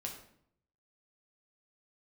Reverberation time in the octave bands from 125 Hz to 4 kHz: 0.95, 0.80, 0.70, 0.65, 0.55, 0.50 seconds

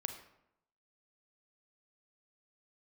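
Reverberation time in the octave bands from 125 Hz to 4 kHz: 0.85, 0.85, 0.80, 0.80, 0.65, 0.50 seconds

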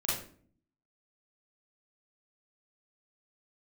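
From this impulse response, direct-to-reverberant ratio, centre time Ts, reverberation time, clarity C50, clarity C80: −7.5 dB, 52 ms, 0.50 s, 1.0 dB, 7.5 dB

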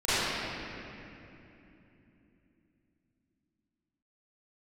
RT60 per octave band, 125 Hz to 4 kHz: 4.5, 4.8, 3.3, 2.7, 2.9, 2.0 seconds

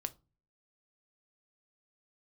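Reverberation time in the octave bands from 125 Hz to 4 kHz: 0.60, 0.45, 0.35, 0.30, 0.20, 0.20 seconds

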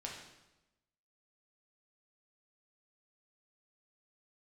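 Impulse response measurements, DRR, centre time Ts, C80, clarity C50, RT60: −2.5 dB, 46 ms, 6.0 dB, 3.5 dB, 1.0 s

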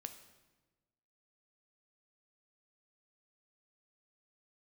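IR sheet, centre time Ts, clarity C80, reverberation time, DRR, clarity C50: 13 ms, 12.5 dB, 1.2 s, 7.5 dB, 10.5 dB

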